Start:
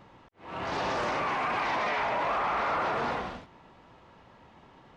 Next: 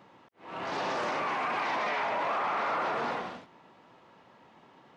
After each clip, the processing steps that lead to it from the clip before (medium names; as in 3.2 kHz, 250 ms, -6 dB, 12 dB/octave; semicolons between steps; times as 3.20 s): high-pass 170 Hz 12 dB/octave; trim -1.5 dB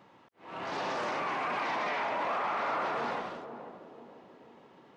band-passed feedback delay 488 ms, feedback 59%, band-pass 300 Hz, level -6.5 dB; trim -2 dB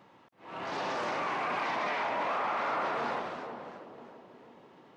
modulated delay 327 ms, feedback 37%, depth 156 cents, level -11.5 dB